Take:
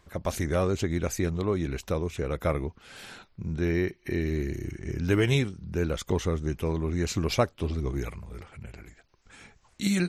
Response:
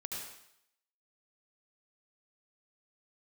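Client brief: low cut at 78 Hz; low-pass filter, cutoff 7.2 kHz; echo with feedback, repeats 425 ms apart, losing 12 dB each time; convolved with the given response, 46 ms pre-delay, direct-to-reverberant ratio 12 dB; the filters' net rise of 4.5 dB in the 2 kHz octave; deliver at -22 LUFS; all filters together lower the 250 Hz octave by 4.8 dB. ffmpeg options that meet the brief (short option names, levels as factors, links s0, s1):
-filter_complex "[0:a]highpass=78,lowpass=7200,equalizer=f=250:t=o:g=-7.5,equalizer=f=2000:t=o:g=5.5,aecho=1:1:425|850|1275:0.251|0.0628|0.0157,asplit=2[s0][s1];[1:a]atrim=start_sample=2205,adelay=46[s2];[s1][s2]afir=irnorm=-1:irlink=0,volume=0.251[s3];[s0][s3]amix=inputs=2:normalize=0,volume=2.66"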